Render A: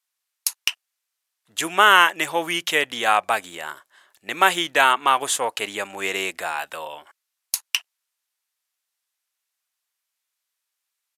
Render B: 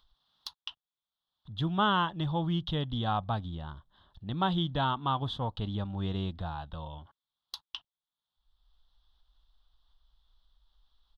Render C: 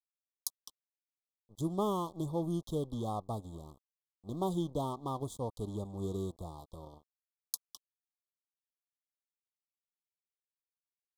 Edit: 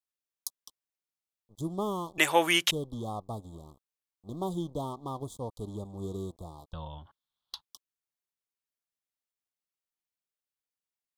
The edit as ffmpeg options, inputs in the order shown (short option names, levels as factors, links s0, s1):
-filter_complex "[2:a]asplit=3[s0][s1][s2];[s0]atrim=end=2.182[s3];[0:a]atrim=start=2.178:end=2.712[s4];[s1]atrim=start=2.708:end=6.732[s5];[1:a]atrim=start=6.728:end=7.652[s6];[s2]atrim=start=7.648[s7];[s3][s4]acrossfade=d=0.004:c1=hsin:c2=hsin[s8];[s8][s5]acrossfade=d=0.004:c1=hsin:c2=hsin[s9];[s9][s6]acrossfade=d=0.004:c1=hsin:c2=hsin[s10];[s10][s7]acrossfade=d=0.004:c1=hsin:c2=hsin"